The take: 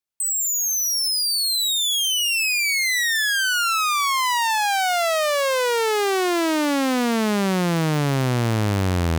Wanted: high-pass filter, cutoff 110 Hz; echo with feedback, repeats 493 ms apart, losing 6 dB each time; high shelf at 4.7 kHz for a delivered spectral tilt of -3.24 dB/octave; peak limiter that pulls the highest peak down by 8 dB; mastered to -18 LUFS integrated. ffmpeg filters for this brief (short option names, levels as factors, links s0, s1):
-af "highpass=110,highshelf=f=4700:g=-8,alimiter=limit=0.112:level=0:latency=1,aecho=1:1:493|986|1479|1972|2465|2958:0.501|0.251|0.125|0.0626|0.0313|0.0157,volume=1.68"